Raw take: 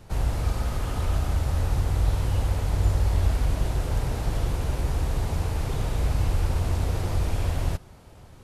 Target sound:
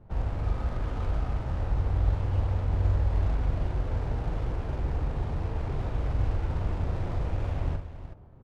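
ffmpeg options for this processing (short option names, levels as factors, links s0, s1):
-af "adynamicsmooth=sensitivity=6:basefreq=930,aecho=1:1:42|372:0.501|0.282,volume=0.596"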